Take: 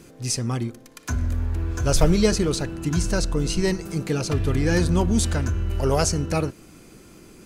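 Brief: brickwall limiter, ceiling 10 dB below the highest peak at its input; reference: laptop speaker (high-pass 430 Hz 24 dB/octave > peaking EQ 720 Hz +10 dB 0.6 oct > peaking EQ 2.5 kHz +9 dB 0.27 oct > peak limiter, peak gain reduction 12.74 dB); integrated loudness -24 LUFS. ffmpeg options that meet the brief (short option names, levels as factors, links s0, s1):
-af "alimiter=limit=0.2:level=0:latency=1,highpass=f=430:w=0.5412,highpass=f=430:w=1.3066,equalizer=f=720:t=o:w=0.6:g=10,equalizer=f=2500:t=o:w=0.27:g=9,volume=2.82,alimiter=limit=0.211:level=0:latency=1"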